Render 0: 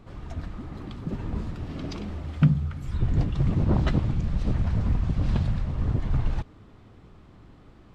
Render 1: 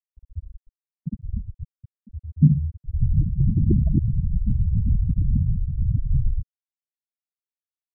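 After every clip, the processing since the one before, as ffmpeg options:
ffmpeg -i in.wav -af "lowpass=frequency=1200:width=0.5412,lowpass=frequency=1200:width=1.3066,afftfilt=real='re*gte(hypot(re,im),0.251)':imag='im*gte(hypot(re,im),0.251)':win_size=1024:overlap=0.75,volume=4dB" out.wav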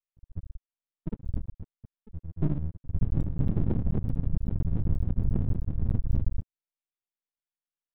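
ffmpeg -i in.wav -af "alimiter=limit=-14dB:level=0:latency=1:release=278,aresample=8000,aeval=exprs='max(val(0),0)':channel_layout=same,aresample=44100" out.wav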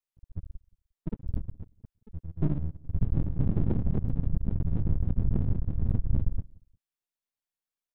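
ffmpeg -i in.wav -filter_complex "[0:a]asplit=2[link_01][link_02];[link_02]adelay=176,lowpass=frequency=910:poles=1,volume=-23.5dB,asplit=2[link_03][link_04];[link_04]adelay=176,lowpass=frequency=910:poles=1,volume=0.27[link_05];[link_01][link_03][link_05]amix=inputs=3:normalize=0" out.wav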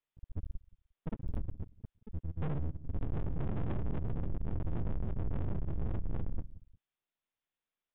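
ffmpeg -i in.wav -af "asoftclip=type=tanh:threshold=-30.5dB,aresample=8000,aresample=44100,volume=3dB" out.wav

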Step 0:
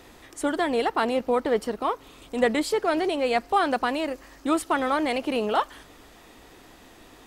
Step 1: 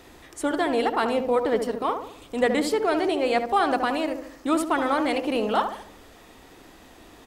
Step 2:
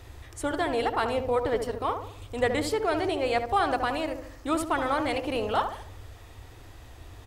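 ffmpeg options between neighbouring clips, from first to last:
ffmpeg -i in.wav -filter_complex "[0:a]asplit=2[link_01][link_02];[link_02]adelay=72,lowpass=frequency=1100:poles=1,volume=-5.5dB,asplit=2[link_03][link_04];[link_04]adelay=72,lowpass=frequency=1100:poles=1,volume=0.53,asplit=2[link_05][link_06];[link_06]adelay=72,lowpass=frequency=1100:poles=1,volume=0.53,asplit=2[link_07][link_08];[link_08]adelay=72,lowpass=frequency=1100:poles=1,volume=0.53,asplit=2[link_09][link_10];[link_10]adelay=72,lowpass=frequency=1100:poles=1,volume=0.53,asplit=2[link_11][link_12];[link_12]adelay=72,lowpass=frequency=1100:poles=1,volume=0.53,asplit=2[link_13][link_14];[link_14]adelay=72,lowpass=frequency=1100:poles=1,volume=0.53[link_15];[link_01][link_03][link_05][link_07][link_09][link_11][link_13][link_15]amix=inputs=8:normalize=0" out.wav
ffmpeg -i in.wav -af "lowshelf=frequency=140:width_type=q:width=3:gain=11,volume=-2.5dB" out.wav

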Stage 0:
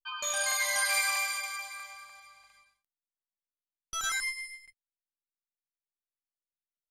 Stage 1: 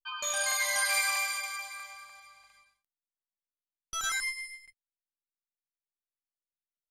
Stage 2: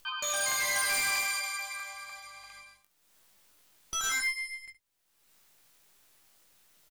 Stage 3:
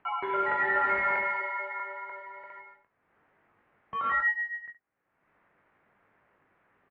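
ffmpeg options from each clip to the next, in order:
ffmpeg -i in.wav -af anull out.wav
ffmpeg -i in.wav -filter_complex "[0:a]asplit=2[link_01][link_02];[link_02]acompressor=mode=upward:threshold=-34dB:ratio=2.5,volume=2dB[link_03];[link_01][link_03]amix=inputs=2:normalize=0,asoftclip=type=hard:threshold=-21dB,aecho=1:1:20|69:0.398|0.178,volume=-5.5dB" out.wav
ffmpeg -i in.wav -af "highpass=frequency=290:width_type=q:width=0.5412,highpass=frequency=290:width_type=q:width=1.307,lowpass=frequency=2200:width_type=q:width=0.5176,lowpass=frequency=2200:width_type=q:width=0.7071,lowpass=frequency=2200:width_type=q:width=1.932,afreqshift=-200,volume=6.5dB" out.wav

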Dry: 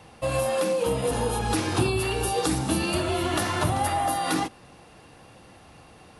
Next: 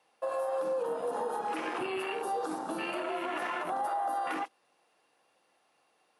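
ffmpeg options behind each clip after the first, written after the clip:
ffmpeg -i in.wav -af "highpass=470,afwtdn=0.0251,alimiter=limit=-23.5dB:level=0:latency=1:release=64,volume=-1.5dB" out.wav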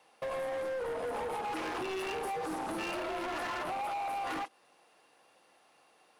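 ffmpeg -i in.wav -af "acompressor=threshold=-36dB:ratio=4,asoftclip=type=hard:threshold=-39.5dB,volume=6dB" out.wav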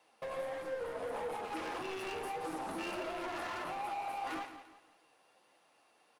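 ffmpeg -i in.wav -af "flanger=delay=3:depth=7.8:regen=-71:speed=0.68:shape=sinusoidal,aecho=1:1:172|344|516|688:0.282|0.104|0.0386|0.0143,flanger=delay=5.9:depth=6.4:regen=65:speed=1.6:shape=sinusoidal,volume=4.5dB" out.wav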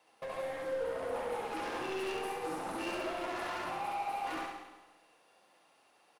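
ffmpeg -i in.wav -af "aecho=1:1:68|136|204|272|340|408:0.708|0.326|0.15|0.0689|0.0317|0.0146" out.wav

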